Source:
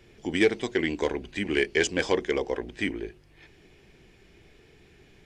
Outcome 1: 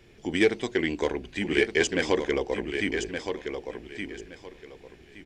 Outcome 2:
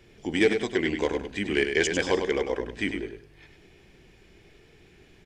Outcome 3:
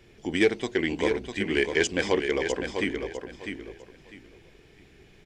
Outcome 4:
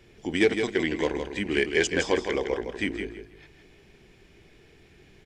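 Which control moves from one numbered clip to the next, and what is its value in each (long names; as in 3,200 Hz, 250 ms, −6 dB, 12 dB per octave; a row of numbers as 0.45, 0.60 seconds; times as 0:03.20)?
repeating echo, delay time: 1,169, 100, 651, 162 milliseconds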